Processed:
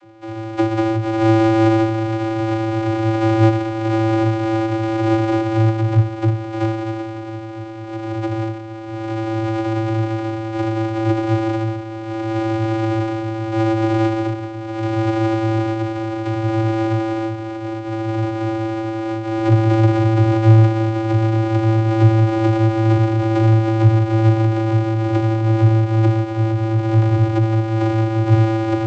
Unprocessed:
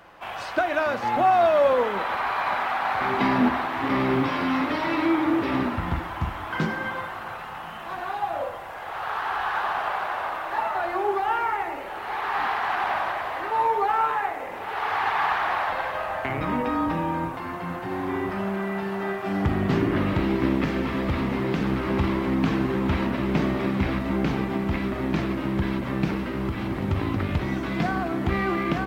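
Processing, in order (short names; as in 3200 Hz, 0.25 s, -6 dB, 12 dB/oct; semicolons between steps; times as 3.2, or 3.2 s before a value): sample sorter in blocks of 256 samples; vocoder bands 32, square 111 Hz; gain +8 dB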